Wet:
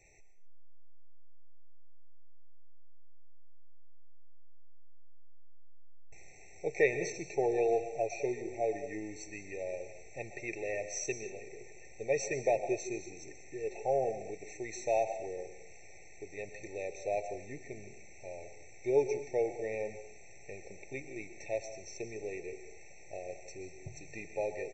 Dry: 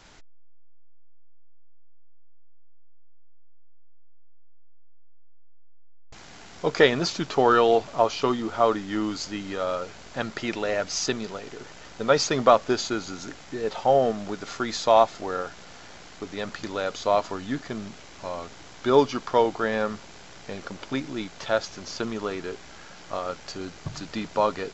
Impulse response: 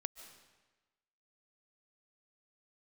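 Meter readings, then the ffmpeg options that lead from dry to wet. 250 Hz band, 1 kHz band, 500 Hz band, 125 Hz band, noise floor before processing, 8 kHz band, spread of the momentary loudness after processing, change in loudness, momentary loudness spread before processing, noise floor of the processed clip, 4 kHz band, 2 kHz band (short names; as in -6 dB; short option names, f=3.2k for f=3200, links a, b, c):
-14.0 dB, -15.5 dB, -9.0 dB, -12.0 dB, -46 dBFS, n/a, 19 LU, -11.0 dB, 18 LU, -51 dBFS, -22.5 dB, -10.0 dB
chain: -filter_complex "[0:a]firequalizer=gain_entry='entry(110,0);entry(240,-15);entry(370,2);entry(910,-6);entry(2700,7);entry(3800,-16);entry(6100,6)':delay=0.05:min_phase=1[a];[1:a]atrim=start_sample=2205,afade=t=out:st=0.37:d=0.01,atrim=end_sample=16758,asetrate=52920,aresample=44100[b];[a][b]afir=irnorm=-1:irlink=0,afftfilt=real='re*eq(mod(floor(b*sr/1024/900),2),0)':imag='im*eq(mod(floor(b*sr/1024/900),2),0)':win_size=1024:overlap=0.75,volume=-5dB"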